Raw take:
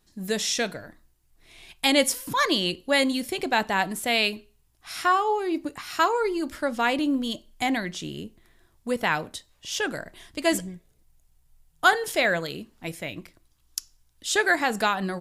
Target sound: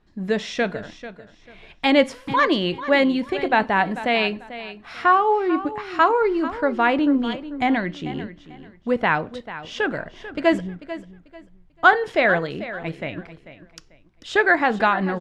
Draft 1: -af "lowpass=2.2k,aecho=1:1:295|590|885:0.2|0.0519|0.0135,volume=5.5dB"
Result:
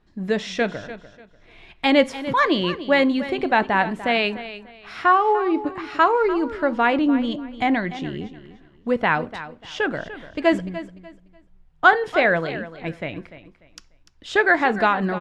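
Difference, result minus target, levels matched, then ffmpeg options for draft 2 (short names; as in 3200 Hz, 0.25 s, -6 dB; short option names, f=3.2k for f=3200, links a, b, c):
echo 0.147 s early
-af "lowpass=2.2k,aecho=1:1:442|884|1326:0.2|0.0519|0.0135,volume=5.5dB"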